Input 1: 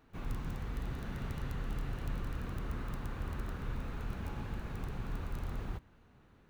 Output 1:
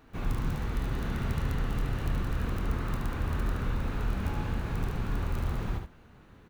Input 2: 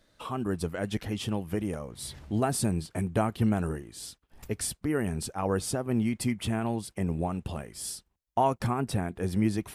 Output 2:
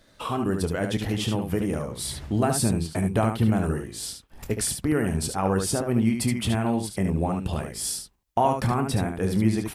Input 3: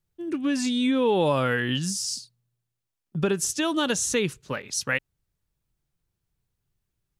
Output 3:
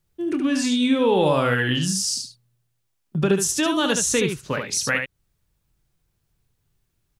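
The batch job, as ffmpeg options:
-filter_complex "[0:a]asplit=2[a][b];[b]acompressor=threshold=-32dB:ratio=6,volume=2dB[c];[a][c]amix=inputs=2:normalize=0,aecho=1:1:26|73:0.237|0.501"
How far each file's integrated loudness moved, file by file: +8.5, +5.0, +4.0 LU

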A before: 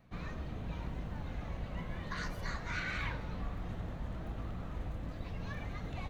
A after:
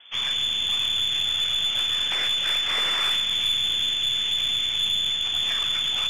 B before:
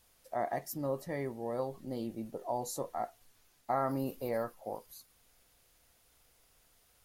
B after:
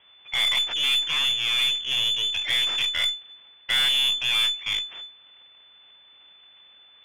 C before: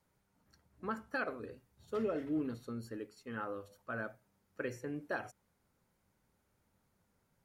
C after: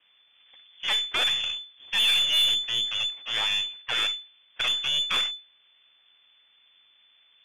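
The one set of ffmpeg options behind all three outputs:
-filter_complex "[0:a]asplit=2[a][b];[b]alimiter=level_in=6.5dB:limit=-24dB:level=0:latency=1:release=28,volume=-6.5dB,volume=0.5dB[c];[a][c]amix=inputs=2:normalize=0,aeval=exprs='abs(val(0))':c=same,lowpass=f=3k:t=q:w=0.5098,lowpass=f=3k:t=q:w=0.6013,lowpass=f=3k:t=q:w=0.9,lowpass=f=3k:t=q:w=2.563,afreqshift=-3500,aeval=exprs='0.119*(cos(1*acos(clip(val(0)/0.119,-1,1)))-cos(1*PI/2))+0.0119*(cos(5*acos(clip(val(0)/0.119,-1,1)))-cos(5*PI/2))+0.00596*(cos(8*acos(clip(val(0)/0.119,-1,1)))-cos(8*PI/2))':c=same,volume=6dB"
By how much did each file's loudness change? +20.0, +16.0, +17.0 LU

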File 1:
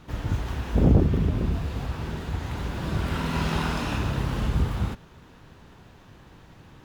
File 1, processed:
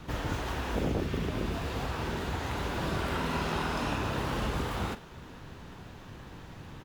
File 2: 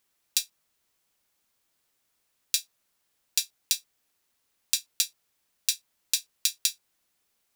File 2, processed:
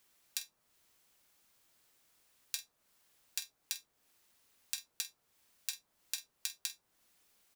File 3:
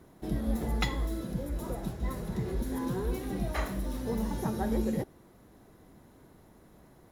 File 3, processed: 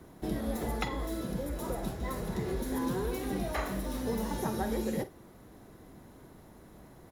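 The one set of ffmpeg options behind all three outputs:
-filter_complex "[0:a]acrossover=split=290|1400[a][b][c];[a]acompressor=threshold=-39dB:ratio=4[d];[b]acompressor=threshold=-36dB:ratio=4[e];[c]acompressor=threshold=-43dB:ratio=4[f];[d][e][f]amix=inputs=3:normalize=0,asplit=2[g][h];[h]adelay=47,volume=-14dB[i];[g][i]amix=inputs=2:normalize=0,volume=3.5dB"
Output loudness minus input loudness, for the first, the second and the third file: -6.0, -13.0, -1.0 LU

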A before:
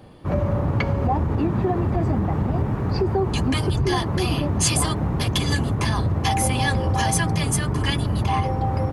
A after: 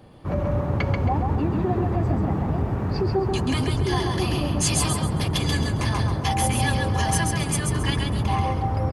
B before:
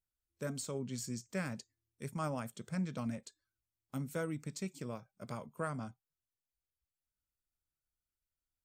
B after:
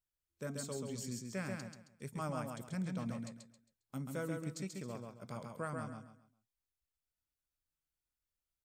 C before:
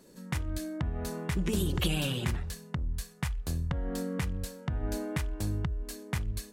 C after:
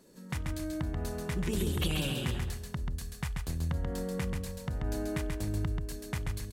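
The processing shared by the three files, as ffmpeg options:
-af "aecho=1:1:135|270|405|540:0.631|0.189|0.0568|0.017,volume=-3dB"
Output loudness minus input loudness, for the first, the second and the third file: -1.5, -1.5, -1.0 LU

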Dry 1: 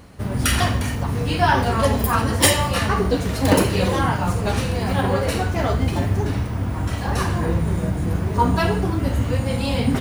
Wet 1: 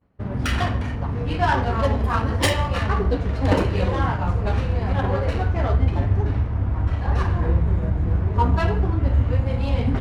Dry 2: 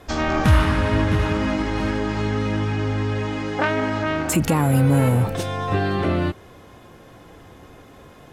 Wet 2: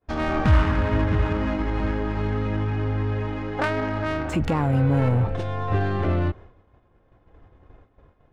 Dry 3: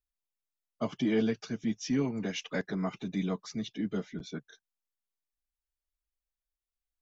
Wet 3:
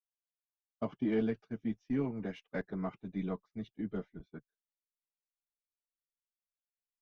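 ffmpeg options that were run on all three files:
-af "asubboost=boost=4:cutoff=80,adynamicsmooth=sensitivity=1:basefreq=2.1k,agate=range=-33dB:threshold=-34dB:ratio=3:detection=peak,volume=-2.5dB"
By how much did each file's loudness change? -1.5, -3.0, -4.0 LU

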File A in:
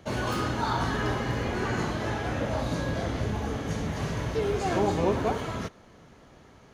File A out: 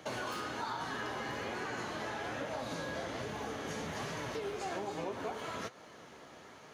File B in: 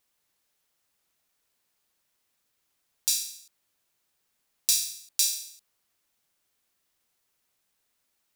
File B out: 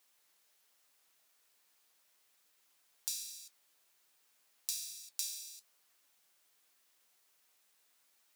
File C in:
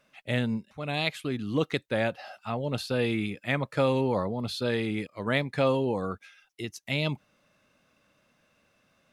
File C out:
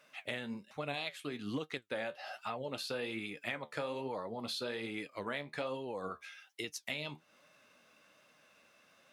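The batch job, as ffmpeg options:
-af "highpass=f=500:p=1,acompressor=threshold=-41dB:ratio=5,flanger=delay=6.4:depth=7.5:regen=60:speed=1.2:shape=sinusoidal,volume=8dB"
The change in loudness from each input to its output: -10.0, -14.5, -11.0 LU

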